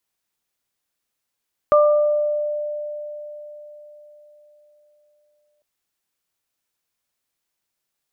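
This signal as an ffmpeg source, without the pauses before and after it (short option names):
-f lavfi -i "aevalsrc='0.299*pow(10,-3*t/4.27)*sin(2*PI*595*t)+0.2*pow(10,-3*t/0.86)*sin(2*PI*1190*t)':d=3.9:s=44100"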